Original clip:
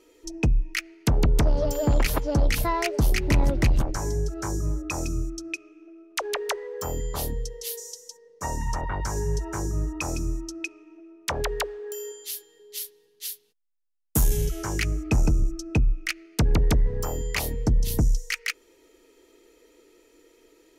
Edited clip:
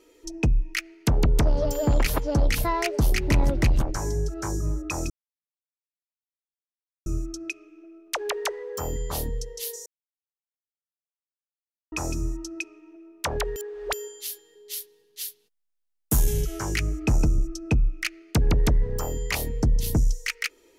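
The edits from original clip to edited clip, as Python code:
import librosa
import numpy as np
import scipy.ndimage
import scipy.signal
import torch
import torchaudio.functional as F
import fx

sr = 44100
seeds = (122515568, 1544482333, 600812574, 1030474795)

y = fx.edit(x, sr, fx.insert_silence(at_s=5.1, length_s=1.96),
    fx.silence(start_s=7.9, length_s=2.06),
    fx.reverse_span(start_s=11.6, length_s=0.37), tone=tone)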